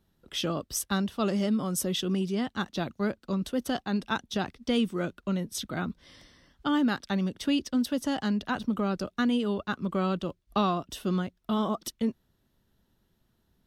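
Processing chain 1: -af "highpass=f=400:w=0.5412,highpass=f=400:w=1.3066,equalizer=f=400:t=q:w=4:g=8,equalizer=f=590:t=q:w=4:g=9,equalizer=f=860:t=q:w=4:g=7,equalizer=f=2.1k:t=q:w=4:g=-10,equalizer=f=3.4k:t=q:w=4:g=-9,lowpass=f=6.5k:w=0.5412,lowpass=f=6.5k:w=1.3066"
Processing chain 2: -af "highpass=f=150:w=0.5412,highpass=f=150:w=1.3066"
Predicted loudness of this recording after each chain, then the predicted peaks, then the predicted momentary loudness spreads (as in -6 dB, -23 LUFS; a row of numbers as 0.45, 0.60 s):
-30.5, -30.0 LUFS; -9.5, -13.0 dBFS; 8, 6 LU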